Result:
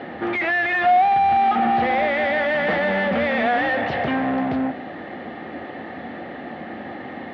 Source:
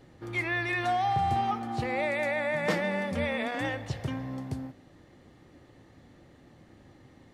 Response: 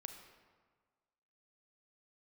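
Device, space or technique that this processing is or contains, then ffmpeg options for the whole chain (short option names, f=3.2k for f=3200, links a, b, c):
overdrive pedal into a guitar cabinet: -filter_complex "[0:a]asplit=2[a][b];[b]highpass=f=720:p=1,volume=34dB,asoftclip=type=tanh:threshold=-15.5dB[c];[a][c]amix=inputs=2:normalize=0,lowpass=f=1.8k:p=1,volume=-6dB,highpass=78,equalizer=f=81:t=q:w=4:g=4,equalizer=f=120:t=q:w=4:g=-9,equalizer=f=220:t=q:w=4:g=8,equalizer=f=730:t=q:w=4:g=8,equalizer=f=1k:t=q:w=4:g=-4,equalizer=f=1.8k:t=q:w=4:g=4,lowpass=f=3.5k:w=0.5412,lowpass=f=3.5k:w=1.3066"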